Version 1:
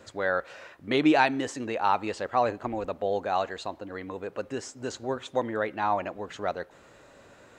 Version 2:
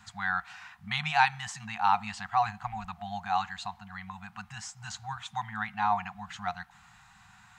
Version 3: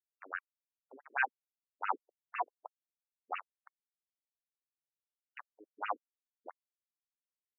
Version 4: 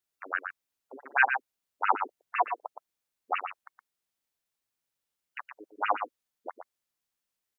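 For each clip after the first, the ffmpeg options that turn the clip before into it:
-af "afftfilt=real='re*(1-between(b*sr/4096,220,700))':imag='im*(1-between(b*sr/4096,220,700))':win_size=4096:overlap=0.75"
-af "aeval=exprs='val(0)*gte(abs(val(0)),0.0668)':c=same,afftfilt=real='re*between(b*sr/1024,320*pow(2100/320,0.5+0.5*sin(2*PI*6*pts/sr))/1.41,320*pow(2100/320,0.5+0.5*sin(2*PI*6*pts/sr))*1.41)':imag='im*between(b*sr/1024,320*pow(2100/320,0.5+0.5*sin(2*PI*6*pts/sr))/1.41,320*pow(2100/320,0.5+0.5*sin(2*PI*6*pts/sr))*1.41)':win_size=1024:overlap=0.75,volume=-3dB"
-af "aecho=1:1:118:0.422,volume=9dB"

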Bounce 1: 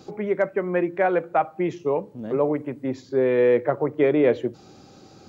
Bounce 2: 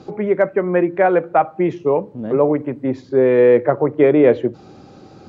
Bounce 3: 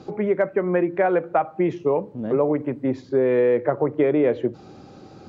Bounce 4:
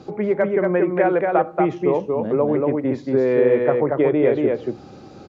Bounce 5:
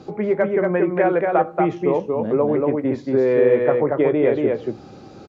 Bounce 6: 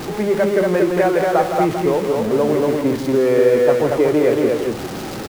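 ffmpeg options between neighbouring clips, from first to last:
-af "aemphasis=mode=reproduction:type=75fm,volume=6dB"
-af "acompressor=threshold=-14dB:ratio=4,volume=-2dB"
-af "aecho=1:1:233:0.708,volume=1dB"
-filter_complex "[0:a]asplit=2[a][b];[b]adelay=18,volume=-13dB[c];[a][c]amix=inputs=2:normalize=0"
-af "aeval=exprs='val(0)+0.5*0.0631*sgn(val(0))':c=same,aecho=1:1:164:0.398"

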